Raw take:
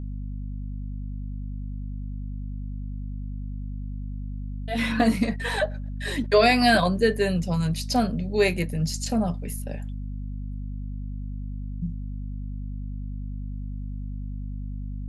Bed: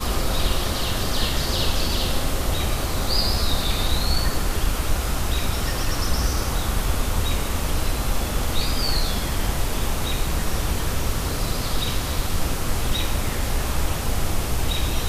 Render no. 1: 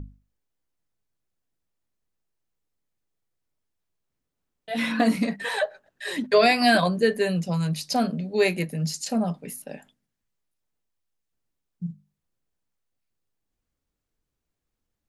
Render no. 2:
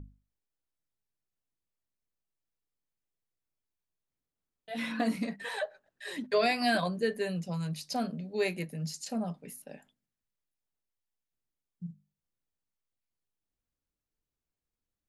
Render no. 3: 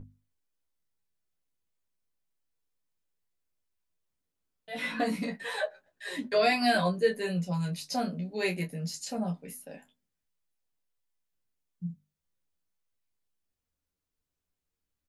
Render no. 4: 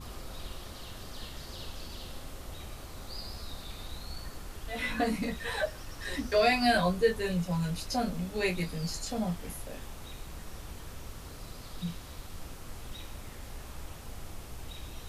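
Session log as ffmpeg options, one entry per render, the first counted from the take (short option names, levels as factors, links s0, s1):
-af "bandreject=f=50:t=h:w=6,bandreject=f=100:t=h:w=6,bandreject=f=150:t=h:w=6,bandreject=f=200:t=h:w=6,bandreject=f=250:t=h:w=6"
-af "volume=0.355"
-filter_complex "[0:a]asplit=2[s0][s1];[s1]adelay=13,volume=0.251[s2];[s0][s2]amix=inputs=2:normalize=0,asplit=2[s3][s4];[s4]aecho=0:1:11|28:0.631|0.422[s5];[s3][s5]amix=inputs=2:normalize=0"
-filter_complex "[1:a]volume=0.1[s0];[0:a][s0]amix=inputs=2:normalize=0"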